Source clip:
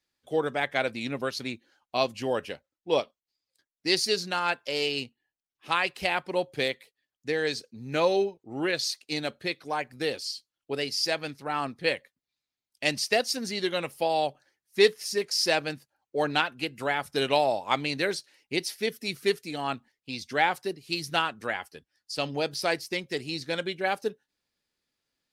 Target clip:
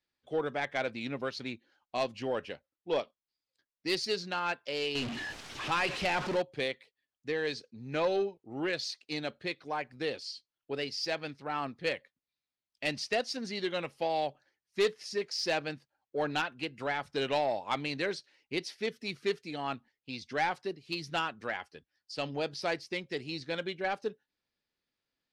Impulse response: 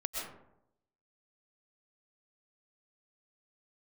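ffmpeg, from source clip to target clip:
-filter_complex "[0:a]asettb=1/sr,asplit=3[a][b][c];[a]atrim=end=4.954[d];[b]atrim=start=4.95:end=6.42,asetpts=PTS-STARTPTS,afade=t=in:d=0.004:c=qsin,afade=t=out:st=1.466:d=0.004:c=qsin,aeval=exprs='val(0)+0.5*0.0447*sgn(val(0))':c=same[e];[c]atrim=start=6.416[f];[d][e]acrossfade=d=0.004:c1=hsin:c2=qsin[g];[g][f]acrossfade=d=0.004:c1=qsin:c2=hsin,lowpass=4.8k,asoftclip=type=tanh:threshold=-17dB,volume=-4dB"

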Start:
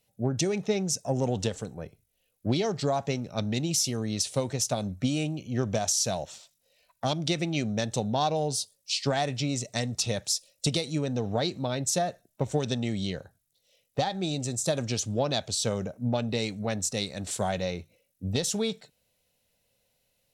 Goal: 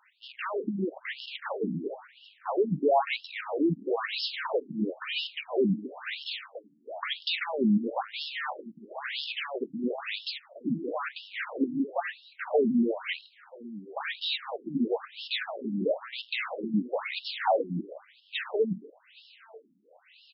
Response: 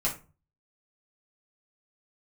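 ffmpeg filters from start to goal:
-filter_complex "[0:a]asplit=2[a][b];[b]highpass=f=720:p=1,volume=35dB,asoftclip=type=tanh:threshold=-13.5dB[c];[a][c]amix=inputs=2:normalize=0,lowpass=f=2k:p=1,volume=-6dB,asplit=2[d][e];[e]adelay=816.3,volume=-16dB,highshelf=f=4k:g=-18.4[f];[d][f]amix=inputs=2:normalize=0,afftfilt=real='re*between(b*sr/1024,230*pow(3900/230,0.5+0.5*sin(2*PI*1*pts/sr))/1.41,230*pow(3900/230,0.5+0.5*sin(2*PI*1*pts/sr))*1.41)':imag='im*between(b*sr/1024,230*pow(3900/230,0.5+0.5*sin(2*PI*1*pts/sr))/1.41,230*pow(3900/230,0.5+0.5*sin(2*PI*1*pts/sr))*1.41)':win_size=1024:overlap=0.75"

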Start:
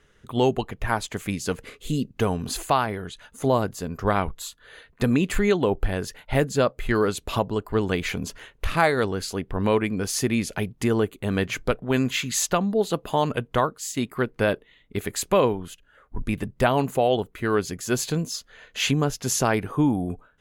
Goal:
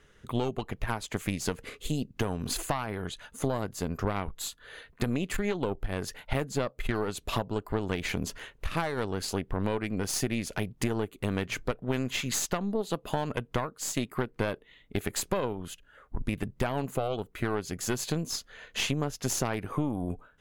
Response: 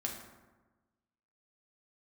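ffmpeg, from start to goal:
-af "acompressor=threshold=-28dB:ratio=6,aeval=exprs='0.188*(cos(1*acos(clip(val(0)/0.188,-1,1)))-cos(1*PI/2))+0.0335*(cos(4*acos(clip(val(0)/0.188,-1,1)))-cos(4*PI/2))':c=same"

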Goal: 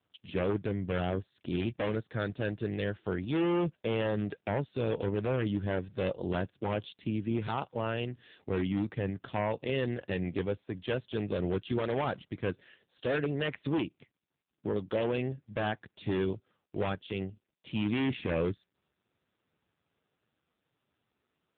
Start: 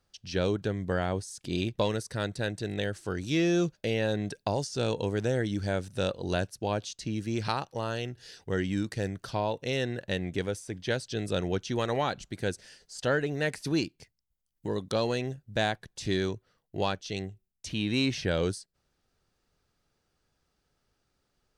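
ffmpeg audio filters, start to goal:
-af "aeval=exprs='0.0668*(abs(mod(val(0)/0.0668+3,4)-2)-1)':c=same,volume=1dB" -ar 8000 -c:a libopencore_amrnb -b:a 5900

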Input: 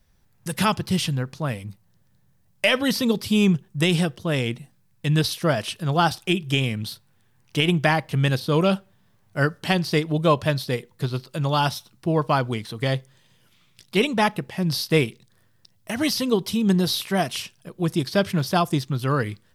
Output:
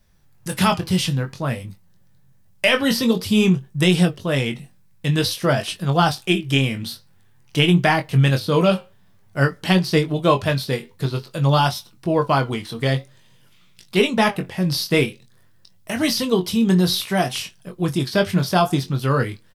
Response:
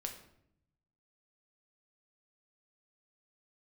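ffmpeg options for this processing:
-filter_complex "[0:a]flanger=delay=4.9:depth=8.3:regen=74:speed=0.51:shape=triangular,asplit=2[a][b];[b]adelay=22,volume=-7dB[c];[a][c]amix=inputs=2:normalize=0,volume=6.5dB"

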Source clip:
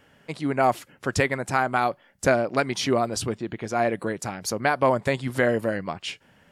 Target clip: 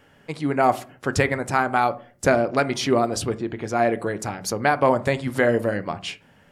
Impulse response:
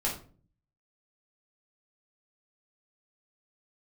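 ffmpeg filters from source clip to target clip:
-filter_complex "[0:a]asplit=2[a][b];[1:a]atrim=start_sample=2205,lowpass=2.2k[c];[b][c]afir=irnorm=-1:irlink=0,volume=-15dB[d];[a][d]amix=inputs=2:normalize=0,volume=1dB"

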